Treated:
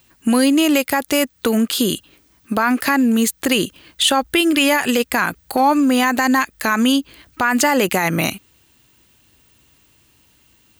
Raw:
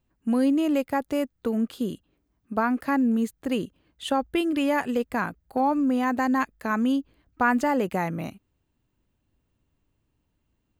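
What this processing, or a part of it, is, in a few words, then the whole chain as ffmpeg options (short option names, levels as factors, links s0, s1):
mastering chain: -af "highpass=49,equalizer=f=350:t=o:w=0.27:g=3.5,acompressor=threshold=0.0355:ratio=2.5,tiltshelf=f=1400:g=-9,asoftclip=type=hard:threshold=0.126,alimiter=level_in=21.1:limit=0.891:release=50:level=0:latency=1,volume=0.562"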